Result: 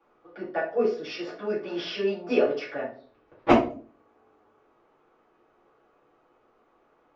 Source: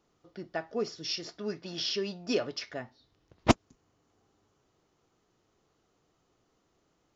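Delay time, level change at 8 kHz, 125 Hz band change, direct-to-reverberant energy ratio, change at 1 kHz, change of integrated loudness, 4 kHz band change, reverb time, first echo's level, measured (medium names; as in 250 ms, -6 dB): no echo, under -10 dB, -2.5 dB, -8.0 dB, +7.5 dB, +5.5 dB, -3.5 dB, 0.45 s, no echo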